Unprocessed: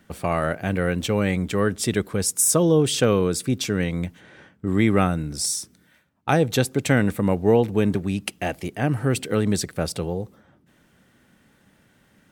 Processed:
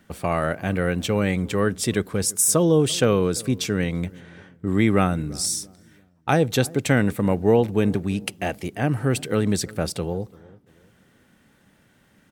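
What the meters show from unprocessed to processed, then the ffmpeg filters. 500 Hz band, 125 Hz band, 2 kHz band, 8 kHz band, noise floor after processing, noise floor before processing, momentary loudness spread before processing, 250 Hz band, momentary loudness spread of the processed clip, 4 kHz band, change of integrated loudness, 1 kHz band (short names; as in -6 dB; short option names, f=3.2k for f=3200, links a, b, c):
0.0 dB, 0.0 dB, 0.0 dB, 0.0 dB, -60 dBFS, -60 dBFS, 10 LU, 0.0 dB, 10 LU, 0.0 dB, 0.0 dB, 0.0 dB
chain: -filter_complex "[0:a]asplit=2[a][b];[b]adelay=340,lowpass=f=800:p=1,volume=-21dB,asplit=2[c][d];[d]adelay=340,lowpass=f=800:p=1,volume=0.39,asplit=2[e][f];[f]adelay=340,lowpass=f=800:p=1,volume=0.39[g];[a][c][e][g]amix=inputs=4:normalize=0"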